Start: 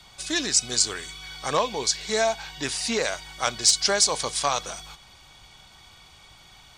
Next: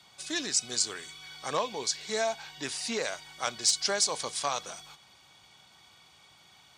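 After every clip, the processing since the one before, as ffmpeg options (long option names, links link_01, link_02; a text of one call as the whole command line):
ffmpeg -i in.wav -af "highpass=130,volume=-6.5dB" out.wav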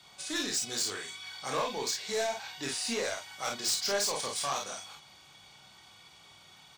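ffmpeg -i in.wav -filter_complex "[0:a]asoftclip=type=tanh:threshold=-28dB,asplit=2[link_01][link_02];[link_02]aecho=0:1:30|50:0.596|0.596[link_03];[link_01][link_03]amix=inputs=2:normalize=0" out.wav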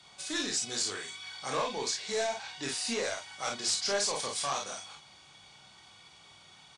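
ffmpeg -i in.wav -af "aresample=22050,aresample=44100" out.wav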